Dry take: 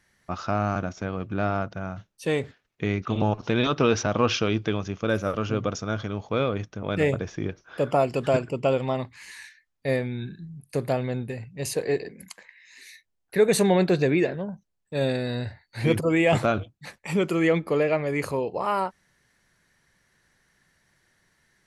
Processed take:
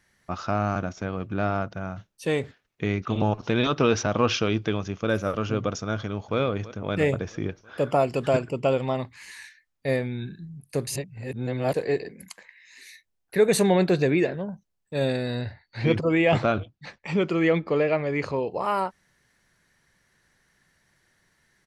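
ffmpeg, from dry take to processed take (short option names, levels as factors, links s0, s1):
-filter_complex "[0:a]asplit=2[s0][s1];[s1]afade=t=in:st=5.95:d=0.01,afade=t=out:st=6.38:d=0.01,aecho=0:1:330|660|990|1320|1650|1980:0.149624|0.0897741|0.0538645|0.0323187|0.0193912|0.0116347[s2];[s0][s2]amix=inputs=2:normalize=0,asettb=1/sr,asplit=3[s3][s4][s5];[s3]atrim=end=15.414[s6];[s4]atrim=start=15.41:end=18.5,asetpts=PTS-STARTPTS,afade=t=in:d=0.004:c=qsin,afade=t=out:st=3.086:d=0.004:c=qsin,lowpass=f=5600:w=0.5412,lowpass=f=5600:w=1.3066[s7];[s5]atrim=start=18.496[s8];[s6][s7]acrossfade=d=0.004:c1=hsin:c2=qsin[s9];[s9][s8]acrossfade=d=0.004:c1=qsin:c2=hsin,asplit=3[s10][s11][s12];[s10]atrim=end=10.872[s13];[s11]atrim=start=10.868:end=11.742,asetpts=PTS-STARTPTS,areverse[s14];[s12]atrim=start=11.738[s15];[s13][s14]acrossfade=d=0.004:c1=hsin:c2=hsin[s16];[s16][s15]acrossfade=d=0.004:c1=hsin:c2=hsin"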